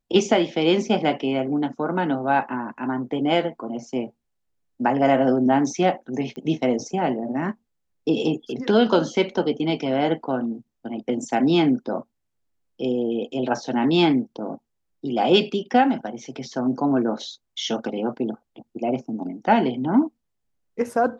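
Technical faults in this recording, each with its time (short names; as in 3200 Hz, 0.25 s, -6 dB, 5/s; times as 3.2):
6.36 pop -24 dBFS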